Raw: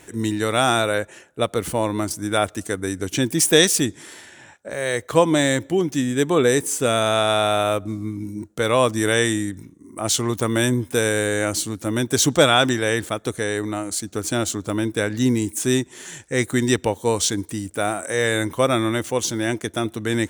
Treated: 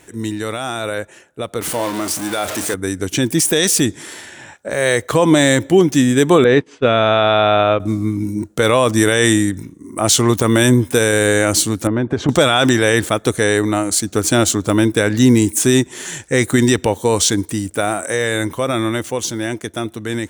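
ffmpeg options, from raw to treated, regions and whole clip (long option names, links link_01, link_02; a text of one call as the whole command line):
ffmpeg -i in.wav -filter_complex "[0:a]asettb=1/sr,asplit=3[link_01][link_02][link_03];[link_01]atrim=end=1.614[link_04];[link_02]atrim=start=1.61:end=2.74,asetpts=PTS-STARTPTS,afade=type=in:duration=0.004:curve=qsin,afade=type=out:start_time=1.126:duration=0.004:curve=qsin,aeval=exprs='val(0)+0.5*0.0841*sgn(val(0))':channel_layout=same,highpass=frequency=330:poles=1,asplit=2[link_05][link_06];[link_06]adelay=34,volume=-12.5dB[link_07];[link_05][link_07]amix=inputs=2:normalize=0,atrim=end_sample=49833[link_08];[link_03]atrim=start=2.736[link_09];[link_04][link_08]acrossfade=duration=0.004:curve1=hsin:curve2=qsin[link_10];[link_10][link_09]acrossfade=duration=0.004:curve1=qsin:curve2=hsin,asettb=1/sr,asplit=3[link_11][link_12][link_13];[link_11]atrim=end=6.444[link_14];[link_12]atrim=start=6.44:end=7.8,asetpts=PTS-STARTPTS,afade=type=in:duration=0.004:curve=qsin,afade=type=out:start_time=1.356:duration=0.004:curve=qsin,agate=range=-33dB:threshold=-18dB:ratio=3:release=100:detection=peak,lowpass=frequency=3500:width=0.5412,lowpass=frequency=3500:width=1.3066[link_15];[link_13]atrim=start=7.796[link_16];[link_14][link_15]acrossfade=duration=0.004:curve1=hsin:curve2=qsin[link_17];[link_17][link_16]acrossfade=duration=0.004:curve1=qsin:curve2=hsin,asettb=1/sr,asplit=3[link_18][link_19][link_20];[link_18]atrim=end=11.874[link_21];[link_19]atrim=start=11.87:end=12.29,asetpts=PTS-STARTPTS,afade=type=in:duration=0.004:curve=qsin,afade=type=out:start_time=0.416:duration=0.004:curve=qsin,lowpass=1500,acompressor=threshold=-22dB:ratio=5:attack=3.2:release=140:knee=1:detection=peak[link_22];[link_20]atrim=start=12.286[link_23];[link_21][link_22]acrossfade=duration=0.004:curve1=hsin:curve2=qsin[link_24];[link_24][link_23]acrossfade=duration=0.004:curve1=qsin:curve2=hsin,alimiter=limit=-11dB:level=0:latency=1:release=33,dynaudnorm=framelen=610:gausssize=11:maxgain=12dB" out.wav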